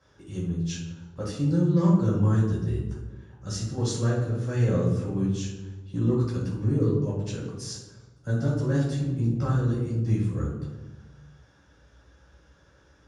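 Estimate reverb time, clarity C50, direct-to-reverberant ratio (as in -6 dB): 1.2 s, 3.0 dB, -7.0 dB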